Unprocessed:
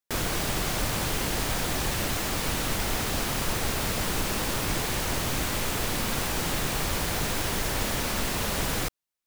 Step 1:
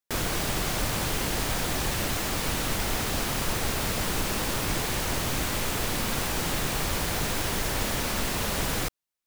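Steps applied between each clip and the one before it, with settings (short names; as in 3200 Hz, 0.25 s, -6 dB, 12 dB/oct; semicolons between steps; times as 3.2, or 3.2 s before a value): nothing audible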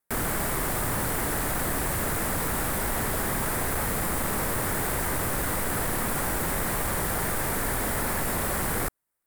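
sine folder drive 13 dB, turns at -14.5 dBFS; vibrato 13 Hz 38 cents; band shelf 4100 Hz -11.5 dB; gain -8.5 dB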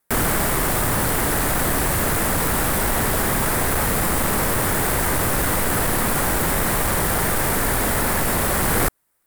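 in parallel at -7.5 dB: wavefolder -28.5 dBFS; on the sum: vocal rider within 4 dB 0.5 s; gain +6 dB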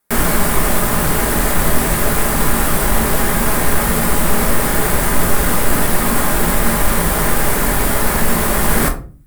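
shoebox room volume 240 m³, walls furnished, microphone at 1.3 m; gain +2 dB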